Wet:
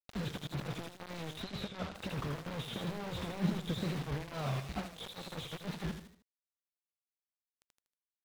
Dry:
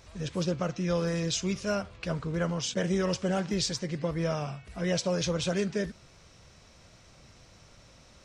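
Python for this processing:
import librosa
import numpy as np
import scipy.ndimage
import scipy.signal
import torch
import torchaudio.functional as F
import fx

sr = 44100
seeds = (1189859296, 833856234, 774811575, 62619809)

p1 = fx.freq_compress(x, sr, knee_hz=3300.0, ratio=4.0)
p2 = fx.over_compress(p1, sr, threshold_db=-35.0, ratio=-0.5)
p3 = fx.low_shelf(p2, sr, hz=490.0, db=8.0, at=(2.68, 3.87))
p4 = fx.quant_dither(p3, sr, seeds[0], bits=6, dither='none')
p5 = p4 + fx.echo_feedback(p4, sr, ms=78, feedback_pct=40, wet_db=-9.5, dry=0)
p6 = fx.wow_flutter(p5, sr, seeds[1], rate_hz=2.1, depth_cents=110.0)
p7 = fx.air_absorb(p6, sr, metres=110.0, at=(1.41, 1.94), fade=0.02)
p8 = fx.slew_limit(p7, sr, full_power_hz=40.0)
y = p8 * librosa.db_to_amplitude(-4.0)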